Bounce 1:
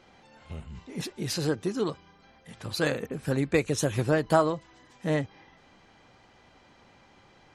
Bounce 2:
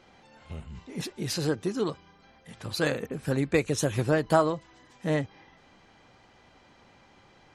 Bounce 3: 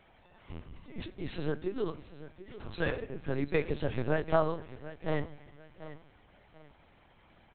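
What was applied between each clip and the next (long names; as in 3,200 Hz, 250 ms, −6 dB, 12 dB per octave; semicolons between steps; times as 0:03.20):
no processing that can be heard
repeating echo 739 ms, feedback 29%, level −15 dB; on a send at −15 dB: convolution reverb RT60 0.80 s, pre-delay 3 ms; on the sum: linear-prediction vocoder at 8 kHz pitch kept; level −4.5 dB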